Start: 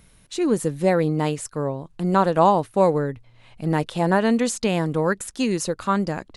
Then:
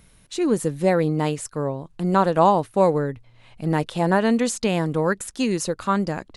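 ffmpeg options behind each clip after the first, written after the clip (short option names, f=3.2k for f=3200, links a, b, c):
-af anull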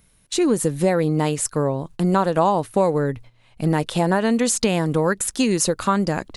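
-af "acompressor=threshold=-23dB:ratio=3,agate=range=-12dB:threshold=-45dB:ratio=16:detection=peak,highshelf=f=7.5k:g=6.5,volume=6.5dB"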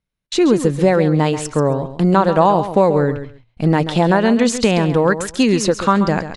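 -filter_complex "[0:a]agate=range=-27dB:threshold=-50dB:ratio=16:detection=peak,lowpass=5.1k,asplit=2[a][b];[b]aecho=0:1:135|270:0.282|0.0451[c];[a][c]amix=inputs=2:normalize=0,volume=5dB"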